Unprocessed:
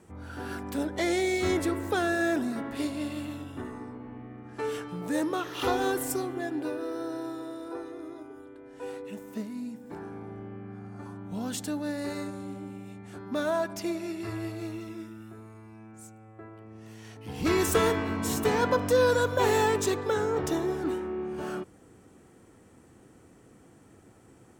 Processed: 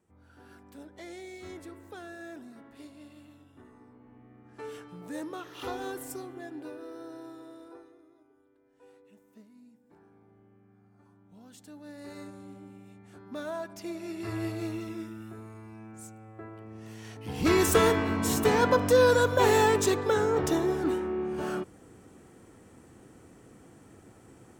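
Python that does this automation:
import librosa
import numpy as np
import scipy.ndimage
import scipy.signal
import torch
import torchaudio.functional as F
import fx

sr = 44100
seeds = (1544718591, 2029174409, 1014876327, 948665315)

y = fx.gain(x, sr, db=fx.line((3.5, -17.0), (4.55, -9.0), (7.62, -9.0), (8.07, -19.0), (11.52, -19.0), (12.23, -8.0), (13.77, -8.0), (14.42, 2.0)))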